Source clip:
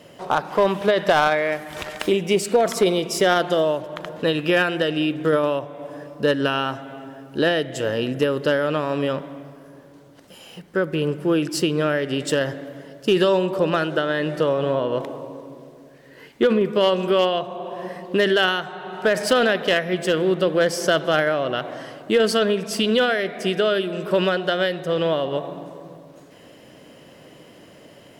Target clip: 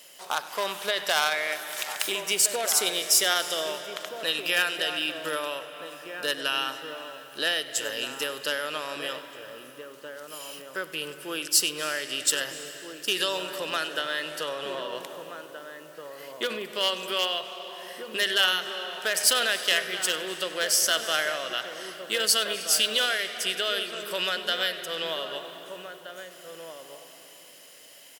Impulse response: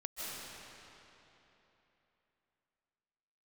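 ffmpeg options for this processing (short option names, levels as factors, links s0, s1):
-filter_complex "[0:a]aderivative,asplit=2[s0][s1];[s1]adelay=1574,volume=0.447,highshelf=f=4000:g=-35.4[s2];[s0][s2]amix=inputs=2:normalize=0,asplit=2[s3][s4];[1:a]atrim=start_sample=2205,adelay=97[s5];[s4][s5]afir=irnorm=-1:irlink=0,volume=0.224[s6];[s3][s6]amix=inputs=2:normalize=0,volume=2.66"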